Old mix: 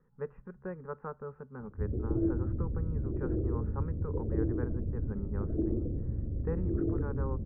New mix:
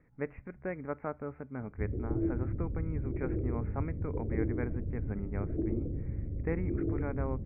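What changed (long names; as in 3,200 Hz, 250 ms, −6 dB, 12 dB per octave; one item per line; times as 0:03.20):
speech: remove phaser with its sweep stopped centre 440 Hz, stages 8
reverb: off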